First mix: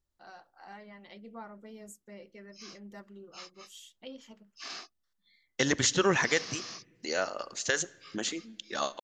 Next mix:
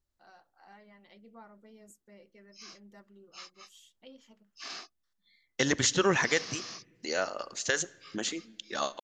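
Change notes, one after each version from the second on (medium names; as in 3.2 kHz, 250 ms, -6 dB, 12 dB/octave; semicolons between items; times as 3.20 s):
first voice -7.0 dB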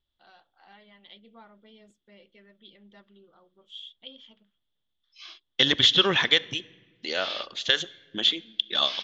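background: entry +2.60 s; master: add resonant low-pass 3.4 kHz, resonance Q 12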